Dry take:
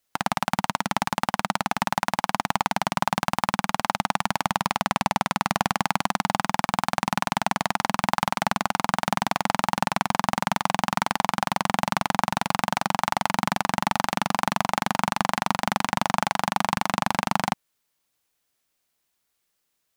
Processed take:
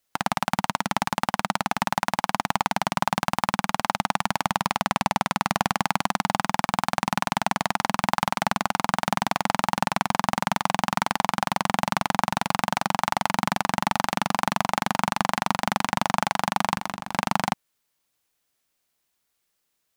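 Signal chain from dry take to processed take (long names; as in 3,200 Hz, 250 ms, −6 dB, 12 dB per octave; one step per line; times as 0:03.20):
0:16.73–0:17.17: compressor whose output falls as the input rises −29 dBFS, ratio −0.5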